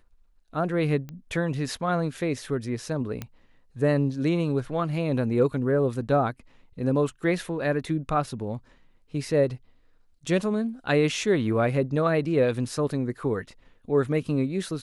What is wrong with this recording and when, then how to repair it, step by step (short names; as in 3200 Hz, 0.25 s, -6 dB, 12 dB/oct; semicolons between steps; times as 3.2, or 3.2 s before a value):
1.09 pop -25 dBFS
3.22 pop -18 dBFS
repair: de-click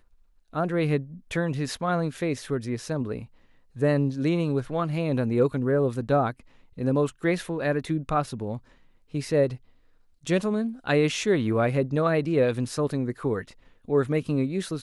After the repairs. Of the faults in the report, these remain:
none